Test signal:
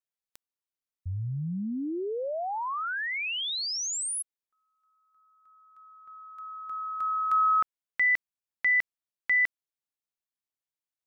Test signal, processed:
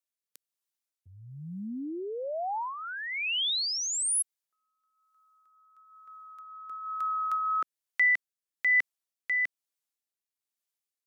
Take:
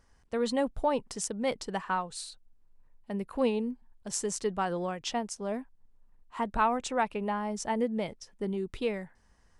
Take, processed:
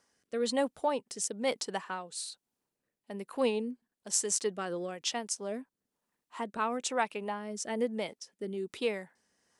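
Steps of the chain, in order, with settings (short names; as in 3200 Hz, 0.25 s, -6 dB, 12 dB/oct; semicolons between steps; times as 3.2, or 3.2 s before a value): HPF 250 Hz 12 dB/oct; high shelf 3800 Hz +8 dB; rotary speaker horn 1.1 Hz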